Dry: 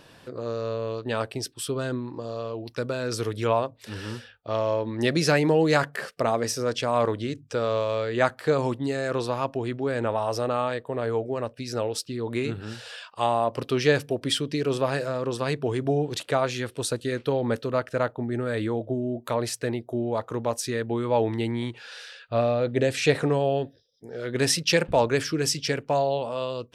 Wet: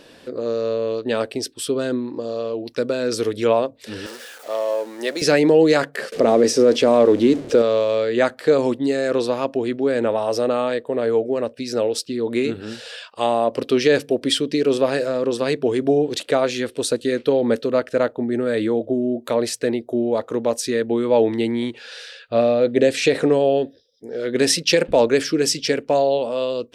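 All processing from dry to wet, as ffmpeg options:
ffmpeg -i in.wav -filter_complex "[0:a]asettb=1/sr,asplit=3[link_01][link_02][link_03];[link_01]atrim=end=4.064[link_04];[link_02]atrim=start=4.06:end=5.22,asetpts=PTS-STARTPTS,afade=type=in:duration=0.004:curve=qsin,afade=type=out:start_time=1.156:duration=0.004:curve=qsin,aeval=exprs='val(0)+0.5*0.0178*sgn(val(0))':channel_layout=same,highpass=620,equalizer=frequency=3000:width_type=o:width=1.9:gain=-6.5[link_05];[link_03]atrim=start=5.216[link_06];[link_04][link_05]acrossfade=duration=0.004:curve1=hsin:curve2=qsin[link_07];[link_07][link_06]acrossfade=duration=0.004:curve1=qsin:curve2=hsin,asettb=1/sr,asplit=3[link_08][link_09][link_10];[link_08]atrim=end=6.124[link_11];[link_09]atrim=start=6.12:end=7.62,asetpts=PTS-STARTPTS,afade=type=in:duration=0.004:curve=qsin,afade=type=out:start_time=1.496:duration=0.004:curve=qsin,aeval=exprs='val(0)+0.5*0.0158*sgn(val(0))':channel_layout=same,lowpass=10000,equalizer=frequency=340:width_type=o:width=1.9:gain=8[link_12];[link_10]atrim=start=7.616[link_13];[link_11][link_12]acrossfade=duration=0.004:curve1=hsin:curve2=qsin[link_14];[link_14][link_13]acrossfade=duration=0.004:curve1=qsin:curve2=hsin,equalizer=frequency=125:width_type=o:width=1:gain=-7,equalizer=frequency=250:width_type=o:width=1:gain=7,equalizer=frequency=500:width_type=o:width=1:gain=7,equalizer=frequency=1000:width_type=o:width=1:gain=-3,equalizer=frequency=2000:width_type=o:width=1:gain=3,equalizer=frequency=4000:width_type=o:width=1:gain=4,equalizer=frequency=8000:width_type=o:width=1:gain=3,alimiter=level_in=5.5dB:limit=-1dB:release=50:level=0:latency=1,volume=-4.5dB" out.wav

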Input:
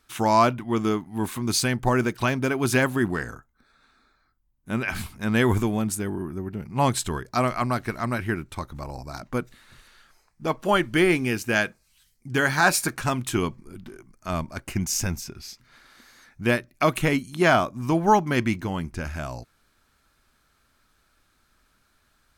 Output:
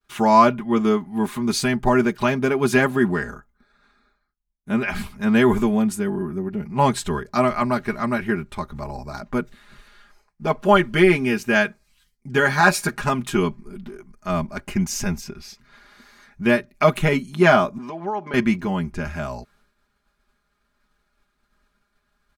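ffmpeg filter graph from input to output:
ffmpeg -i in.wav -filter_complex "[0:a]asettb=1/sr,asplit=3[link_01][link_02][link_03];[link_01]atrim=end=17.784[link_04];[link_02]atrim=start=17.78:end=18.34,asetpts=PTS-STARTPTS,afade=type=in:duration=0.004:curve=qsin,afade=type=out:start_time=0.556:duration=0.004:curve=qsin,acompressor=threshold=-26dB:ratio=12:attack=3.2:release=140:knee=1:detection=peak,acrossover=split=240 5600:gain=0.0891 1 0.126[link_05][link_06][link_07];[link_05][link_06][link_07]amix=inputs=3:normalize=0[link_08];[link_03]atrim=start=18.336[link_09];[link_04][link_08]acrossfade=duration=0.004:curve1=hsin:curve2=qsin[link_10];[link_10][link_09]acrossfade=duration=0.004:curve1=qsin:curve2=hsin,agate=range=-33dB:threshold=-58dB:ratio=3:detection=peak,highshelf=frequency=4500:gain=-9.5,aecho=1:1:4.9:0.79,volume=2.5dB" out.wav

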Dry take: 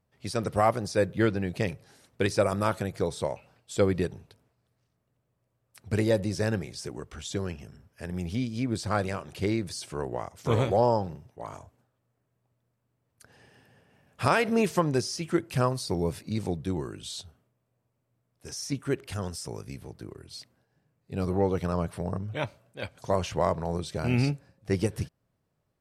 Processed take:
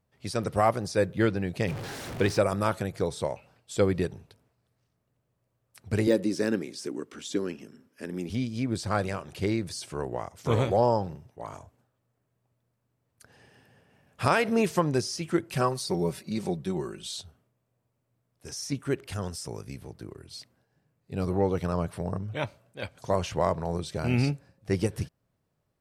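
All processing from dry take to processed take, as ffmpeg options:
ffmpeg -i in.wav -filter_complex "[0:a]asettb=1/sr,asplit=3[link_01][link_02][link_03];[link_01]atrim=end=1.684[link_04];[link_02]atrim=start=1.68:end=2.39,asetpts=PTS-STARTPTS,afade=type=in:duration=0.004:curve=qsin,afade=type=out:start_time=0.706:duration=0.004:curve=qsin,aeval=exprs='val(0)+0.5*0.0282*sgn(val(0))':channel_layout=same,aemphasis=mode=reproduction:type=cd[link_05];[link_03]atrim=start=2.386[link_06];[link_04][link_05]acrossfade=duration=0.004:curve1=hsin:curve2=qsin[link_07];[link_07][link_06]acrossfade=duration=0.004:curve1=qsin:curve2=hsin,asettb=1/sr,asplit=3[link_08][link_09][link_10];[link_08]atrim=end=6.074[link_11];[link_09]atrim=start=6.07:end=8.3,asetpts=PTS-STARTPTS,afade=type=in:duration=0.004:curve=qsin,afade=type=out:start_time=2.226:duration=0.004:curve=qsin,equalizer=frequency=730:width_type=o:width=0.64:gain=-7.5,deesser=0.75,highpass=frequency=270:width_type=q:width=2.7[link_12];[link_10]atrim=start=8.296[link_13];[link_11][link_12]acrossfade=duration=0.004:curve1=hsin:curve2=qsin[link_14];[link_14][link_13]acrossfade=duration=0.004:curve1=qsin:curve2=hsin,asettb=1/sr,asplit=3[link_15][link_16][link_17];[link_15]atrim=end=15.524[link_18];[link_16]atrim=start=15.52:end=17.17,asetpts=PTS-STARTPTS,afade=type=in:duration=0.004:curve=qsin,afade=type=out:start_time=1.646:duration=0.004:curve=qsin,lowshelf=frequency=160:gain=-5,aecho=1:1:5.3:0.61,atrim=end_sample=72765[link_19];[link_17]atrim=start=17.166[link_20];[link_18][link_19]acrossfade=duration=0.004:curve1=hsin:curve2=qsin[link_21];[link_21][link_20]acrossfade=duration=0.004:curve1=qsin:curve2=hsin" out.wav

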